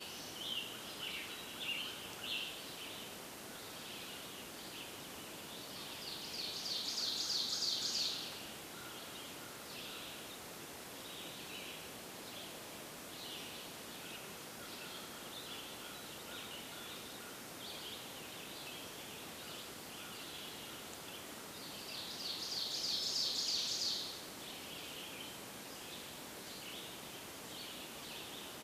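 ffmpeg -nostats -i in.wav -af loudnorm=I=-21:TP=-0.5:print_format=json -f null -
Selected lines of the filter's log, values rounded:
"input_i" : "-42.7",
"input_tp" : "-24.3",
"input_lra" : "9.1",
"input_thresh" : "-52.7",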